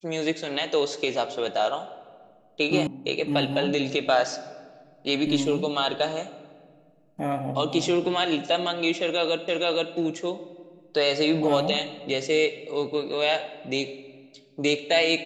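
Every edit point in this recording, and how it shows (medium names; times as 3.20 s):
2.87 s: sound stops dead
9.48 s: repeat of the last 0.47 s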